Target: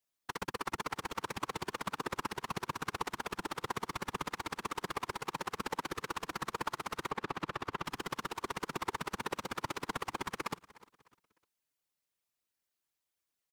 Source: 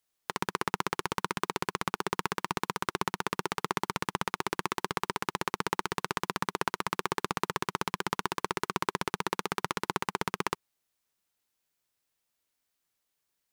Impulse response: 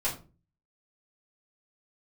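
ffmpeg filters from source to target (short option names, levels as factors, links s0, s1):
-filter_complex "[0:a]aecho=1:1:302|604|906:0.1|0.035|0.0123,asettb=1/sr,asplit=3[s0][s1][s2];[s0]atrim=end=7.084[s3];[s1]atrim=start=7.08:end=7.86,asetpts=PTS-STARTPTS,afade=t=in:d=0.004:c=qsin,afade=t=out:st=0.776:d=0.004:c=qsin,acrossover=split=4400[s4][s5];[s5]acompressor=threshold=0.00447:ratio=4:attack=1:release=60[s6];[s4][s6]amix=inputs=2:normalize=0[s7];[s2]atrim=start=7.856[s8];[s3][s7]acrossfade=d=0.004:c1=hsin:c2=qsin[s9];[s9][s8]acrossfade=d=0.004:c1=qsin:c2=hsin,afftfilt=real='hypot(re,im)*cos(2*PI*random(0))':imag='hypot(re,im)*sin(2*PI*random(1))':win_size=512:overlap=0.75"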